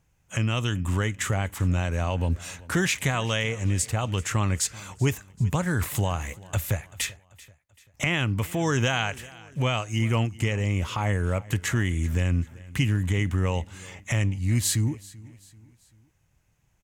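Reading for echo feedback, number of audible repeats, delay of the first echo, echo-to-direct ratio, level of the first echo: 43%, 2, 0.387 s, -20.0 dB, -21.0 dB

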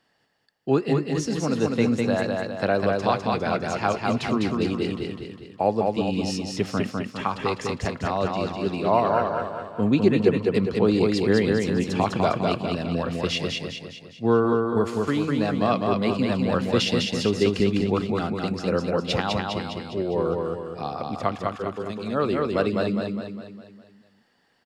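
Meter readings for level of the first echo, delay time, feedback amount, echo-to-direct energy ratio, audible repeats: -3.0 dB, 0.203 s, 49%, -2.0 dB, 6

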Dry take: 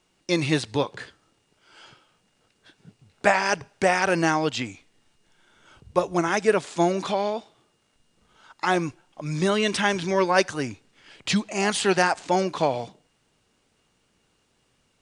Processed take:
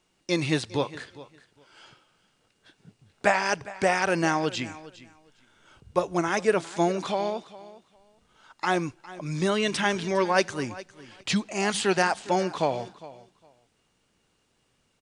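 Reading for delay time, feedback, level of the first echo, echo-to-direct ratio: 0.407 s, 18%, -18.0 dB, -18.0 dB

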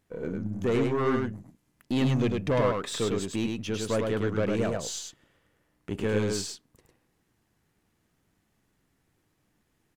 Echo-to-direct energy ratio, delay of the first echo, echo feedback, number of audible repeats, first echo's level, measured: -3.5 dB, 0.103 s, no steady repeat, 1, -3.5 dB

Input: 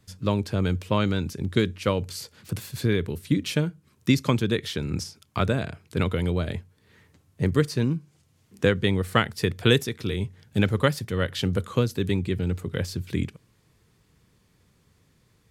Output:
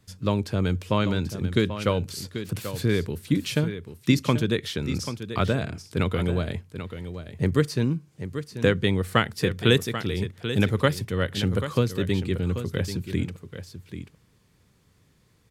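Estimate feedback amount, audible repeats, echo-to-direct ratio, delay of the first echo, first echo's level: no steady repeat, 1, -10.5 dB, 0.787 s, -10.5 dB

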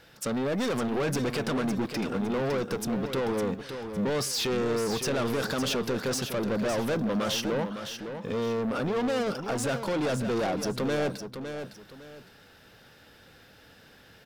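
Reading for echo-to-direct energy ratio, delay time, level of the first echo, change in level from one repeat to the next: -8.0 dB, 0.558 s, -8.5 dB, -11.0 dB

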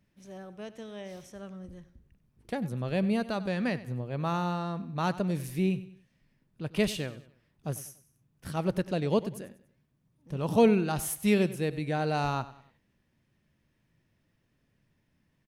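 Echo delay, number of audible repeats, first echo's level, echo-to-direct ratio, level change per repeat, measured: 96 ms, 3, -16.5 dB, -16.0 dB, -8.0 dB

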